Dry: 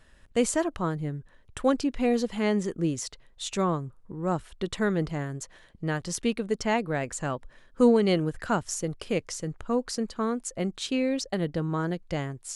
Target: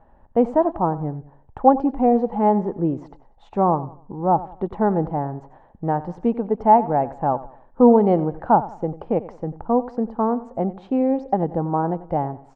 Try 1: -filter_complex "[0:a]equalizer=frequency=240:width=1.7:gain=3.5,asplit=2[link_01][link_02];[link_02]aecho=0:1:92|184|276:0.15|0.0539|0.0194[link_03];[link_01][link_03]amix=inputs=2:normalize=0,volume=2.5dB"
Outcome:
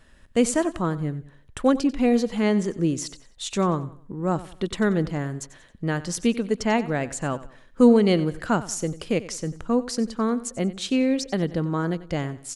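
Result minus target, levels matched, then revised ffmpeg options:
1,000 Hz band −8.5 dB
-filter_complex "[0:a]lowpass=frequency=830:width_type=q:width=7.4,equalizer=frequency=240:width=1.7:gain=3.5,asplit=2[link_01][link_02];[link_02]aecho=0:1:92|184|276:0.15|0.0539|0.0194[link_03];[link_01][link_03]amix=inputs=2:normalize=0,volume=2.5dB"

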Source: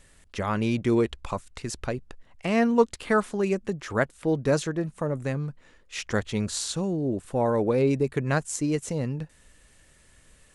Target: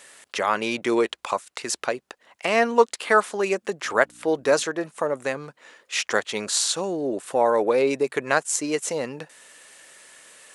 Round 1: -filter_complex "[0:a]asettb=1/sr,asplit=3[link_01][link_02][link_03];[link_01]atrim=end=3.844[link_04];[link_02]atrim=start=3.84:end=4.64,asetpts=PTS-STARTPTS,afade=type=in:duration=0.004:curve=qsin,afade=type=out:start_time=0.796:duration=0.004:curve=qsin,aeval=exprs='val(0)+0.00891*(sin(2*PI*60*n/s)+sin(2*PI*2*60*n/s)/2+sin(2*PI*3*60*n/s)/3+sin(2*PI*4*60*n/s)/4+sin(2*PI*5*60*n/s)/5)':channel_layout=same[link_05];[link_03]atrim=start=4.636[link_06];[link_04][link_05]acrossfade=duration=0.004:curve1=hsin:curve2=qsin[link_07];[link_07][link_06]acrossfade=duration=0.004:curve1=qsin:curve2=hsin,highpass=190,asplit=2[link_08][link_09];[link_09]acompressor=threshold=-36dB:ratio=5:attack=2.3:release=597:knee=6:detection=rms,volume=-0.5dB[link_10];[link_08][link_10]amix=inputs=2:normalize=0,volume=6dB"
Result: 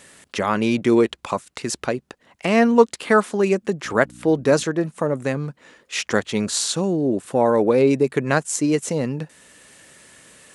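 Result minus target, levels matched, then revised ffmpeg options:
250 Hz band +6.0 dB
-filter_complex "[0:a]asettb=1/sr,asplit=3[link_01][link_02][link_03];[link_01]atrim=end=3.844[link_04];[link_02]atrim=start=3.84:end=4.64,asetpts=PTS-STARTPTS,afade=type=in:duration=0.004:curve=qsin,afade=type=out:start_time=0.796:duration=0.004:curve=qsin,aeval=exprs='val(0)+0.00891*(sin(2*PI*60*n/s)+sin(2*PI*2*60*n/s)/2+sin(2*PI*3*60*n/s)/3+sin(2*PI*4*60*n/s)/4+sin(2*PI*5*60*n/s)/5)':channel_layout=same[link_05];[link_03]atrim=start=4.636[link_06];[link_04][link_05]acrossfade=duration=0.004:curve1=hsin:curve2=qsin[link_07];[link_07][link_06]acrossfade=duration=0.004:curve1=qsin:curve2=hsin,highpass=510,asplit=2[link_08][link_09];[link_09]acompressor=threshold=-36dB:ratio=5:attack=2.3:release=597:knee=6:detection=rms,volume=-0.5dB[link_10];[link_08][link_10]amix=inputs=2:normalize=0,volume=6dB"

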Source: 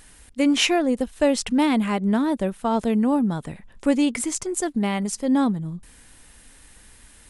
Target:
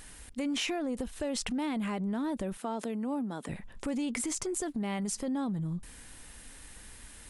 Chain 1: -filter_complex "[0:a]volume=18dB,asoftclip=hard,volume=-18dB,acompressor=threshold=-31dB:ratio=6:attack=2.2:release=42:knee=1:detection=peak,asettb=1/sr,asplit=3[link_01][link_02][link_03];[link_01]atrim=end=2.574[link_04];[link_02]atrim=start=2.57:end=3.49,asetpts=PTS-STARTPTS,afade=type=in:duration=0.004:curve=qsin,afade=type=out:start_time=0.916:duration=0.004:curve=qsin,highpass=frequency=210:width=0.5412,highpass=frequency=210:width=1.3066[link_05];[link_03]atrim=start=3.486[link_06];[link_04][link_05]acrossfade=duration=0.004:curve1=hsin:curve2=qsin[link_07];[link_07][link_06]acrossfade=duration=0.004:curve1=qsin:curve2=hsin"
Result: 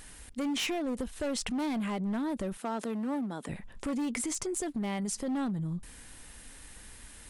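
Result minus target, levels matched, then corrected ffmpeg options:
gain into a clipping stage and back: distortion +26 dB
-filter_complex "[0:a]volume=10dB,asoftclip=hard,volume=-10dB,acompressor=threshold=-31dB:ratio=6:attack=2.2:release=42:knee=1:detection=peak,asettb=1/sr,asplit=3[link_01][link_02][link_03];[link_01]atrim=end=2.574[link_04];[link_02]atrim=start=2.57:end=3.49,asetpts=PTS-STARTPTS,afade=type=in:duration=0.004:curve=qsin,afade=type=out:start_time=0.916:duration=0.004:curve=qsin,highpass=frequency=210:width=0.5412,highpass=frequency=210:width=1.3066[link_05];[link_03]atrim=start=3.486[link_06];[link_04][link_05]acrossfade=duration=0.004:curve1=hsin:curve2=qsin[link_07];[link_07][link_06]acrossfade=duration=0.004:curve1=qsin:curve2=hsin"

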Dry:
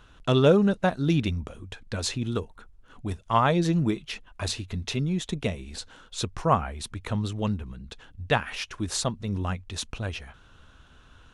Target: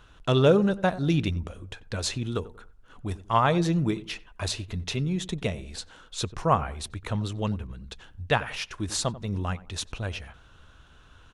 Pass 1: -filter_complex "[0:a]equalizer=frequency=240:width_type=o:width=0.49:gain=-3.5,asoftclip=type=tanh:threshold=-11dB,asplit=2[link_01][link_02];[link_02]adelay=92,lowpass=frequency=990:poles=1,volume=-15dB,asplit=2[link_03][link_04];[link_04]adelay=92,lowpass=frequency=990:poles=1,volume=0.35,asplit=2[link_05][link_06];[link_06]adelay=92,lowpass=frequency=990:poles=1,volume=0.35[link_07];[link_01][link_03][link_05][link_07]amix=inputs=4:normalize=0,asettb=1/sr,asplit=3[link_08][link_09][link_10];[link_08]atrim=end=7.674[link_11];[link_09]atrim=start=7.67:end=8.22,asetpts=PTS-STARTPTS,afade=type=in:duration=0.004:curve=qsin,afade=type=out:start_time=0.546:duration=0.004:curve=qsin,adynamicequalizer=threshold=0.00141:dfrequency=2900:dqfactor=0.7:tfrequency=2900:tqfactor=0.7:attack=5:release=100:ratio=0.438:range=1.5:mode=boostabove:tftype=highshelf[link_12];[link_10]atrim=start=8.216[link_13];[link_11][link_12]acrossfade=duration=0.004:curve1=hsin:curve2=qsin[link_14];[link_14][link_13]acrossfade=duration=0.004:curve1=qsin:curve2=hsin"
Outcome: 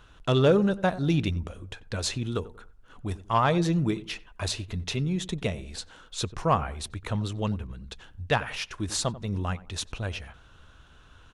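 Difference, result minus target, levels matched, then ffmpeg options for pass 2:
soft clipping: distortion +20 dB
-filter_complex "[0:a]equalizer=frequency=240:width_type=o:width=0.49:gain=-3.5,asoftclip=type=tanh:threshold=0dB,asplit=2[link_01][link_02];[link_02]adelay=92,lowpass=frequency=990:poles=1,volume=-15dB,asplit=2[link_03][link_04];[link_04]adelay=92,lowpass=frequency=990:poles=1,volume=0.35,asplit=2[link_05][link_06];[link_06]adelay=92,lowpass=frequency=990:poles=1,volume=0.35[link_07];[link_01][link_03][link_05][link_07]amix=inputs=4:normalize=0,asettb=1/sr,asplit=3[link_08][link_09][link_10];[link_08]atrim=end=7.674[link_11];[link_09]atrim=start=7.67:end=8.22,asetpts=PTS-STARTPTS,afade=type=in:duration=0.004:curve=qsin,afade=type=out:start_time=0.546:duration=0.004:curve=qsin,adynamicequalizer=threshold=0.00141:dfrequency=2900:dqfactor=0.7:tfrequency=2900:tqfactor=0.7:attack=5:release=100:ratio=0.438:range=1.5:mode=boostabove:tftype=highshelf[link_12];[link_10]atrim=start=8.216[link_13];[link_11][link_12]acrossfade=duration=0.004:curve1=hsin:curve2=qsin[link_14];[link_14][link_13]acrossfade=duration=0.004:curve1=qsin:curve2=hsin"

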